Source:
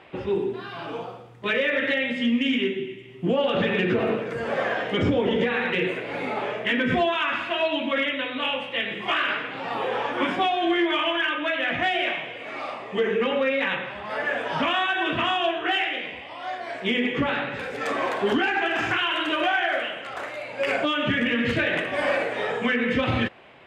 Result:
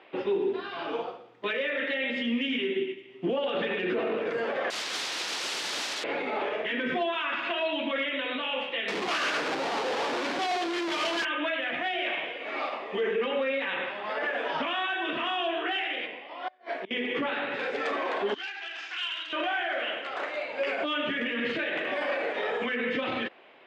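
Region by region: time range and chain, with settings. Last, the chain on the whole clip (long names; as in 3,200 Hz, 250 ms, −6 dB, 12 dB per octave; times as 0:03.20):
0:04.70–0:06.04: wrap-around overflow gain 30.5 dB + spectral tilt +2 dB per octave + bad sample-rate conversion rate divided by 2×, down none, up hold
0:08.88–0:11.25: high-pass filter 55 Hz 24 dB per octave + comparator with hysteresis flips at −35.5 dBFS + amplitude tremolo 7.8 Hz, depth 47%
0:16.07–0:16.91: high-shelf EQ 3,000 Hz −7.5 dB + gate with flip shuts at −24 dBFS, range −25 dB + high-pass filter 140 Hz
0:18.34–0:19.33: resonant band-pass 5,400 Hz, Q 1.3 + saturating transformer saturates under 2,200 Hz
whole clip: Chebyshev band-pass filter 320–4,300 Hz, order 2; brickwall limiter −24.5 dBFS; expander for the loud parts 1.5 to 1, over −45 dBFS; level +4.5 dB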